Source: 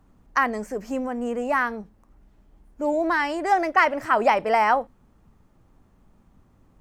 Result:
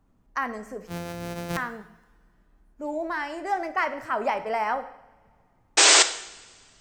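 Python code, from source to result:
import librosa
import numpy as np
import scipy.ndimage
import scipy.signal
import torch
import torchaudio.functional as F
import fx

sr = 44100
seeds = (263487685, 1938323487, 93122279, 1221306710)

y = fx.sample_sort(x, sr, block=256, at=(0.87, 1.57))
y = fx.spec_paint(y, sr, seeds[0], shape='noise', start_s=5.77, length_s=0.26, low_hz=290.0, high_hz=8600.0, level_db=-8.0)
y = fx.rev_double_slope(y, sr, seeds[1], early_s=0.71, late_s=2.4, knee_db=-19, drr_db=9.0)
y = F.gain(torch.from_numpy(y), -7.5).numpy()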